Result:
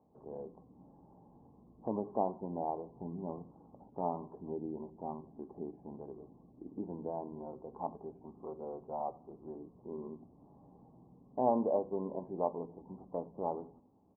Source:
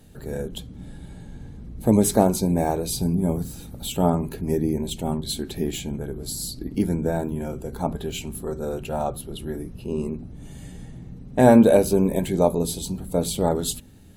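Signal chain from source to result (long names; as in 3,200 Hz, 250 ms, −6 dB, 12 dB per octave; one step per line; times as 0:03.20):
Chebyshev low-pass with heavy ripple 1,100 Hz, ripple 3 dB
first difference
in parallel at −2.5 dB: downward compressor, threshold −54 dBFS, peak gain reduction 19.5 dB
on the sum: repeating echo 89 ms, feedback 43%, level −23 dB
level +8.5 dB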